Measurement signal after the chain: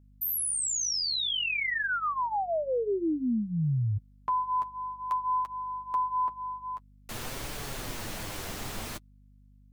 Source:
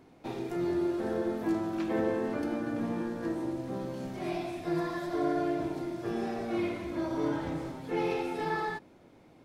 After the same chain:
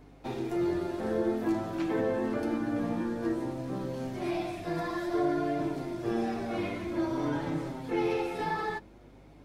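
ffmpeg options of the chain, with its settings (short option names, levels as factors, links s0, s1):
-filter_complex "[0:a]acrossover=split=350[s0][s1];[s1]acompressor=threshold=0.0355:ratio=6[s2];[s0][s2]amix=inputs=2:normalize=0,flanger=delay=6.7:depth=3.7:regen=-20:speed=0.53:shape=triangular,aeval=exprs='val(0)+0.000891*(sin(2*PI*50*n/s)+sin(2*PI*2*50*n/s)/2+sin(2*PI*3*50*n/s)/3+sin(2*PI*4*50*n/s)/4+sin(2*PI*5*50*n/s)/5)':c=same,volume=1.78"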